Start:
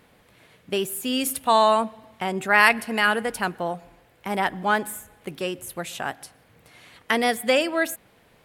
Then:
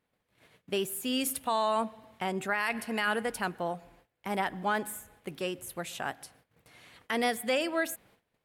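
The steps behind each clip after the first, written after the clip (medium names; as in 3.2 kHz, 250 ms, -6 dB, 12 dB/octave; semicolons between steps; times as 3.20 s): gate -54 dBFS, range -18 dB; peak limiter -13.5 dBFS, peak gain reduction 11.5 dB; trim -5.5 dB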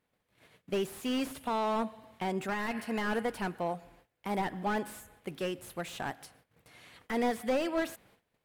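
slew-rate limiter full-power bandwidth 36 Hz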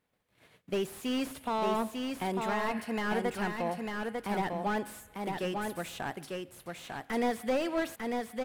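delay 898 ms -4 dB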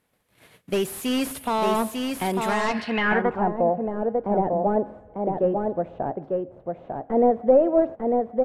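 low-pass sweep 12 kHz -> 610 Hz, 2.46–3.53 s; trim +7.5 dB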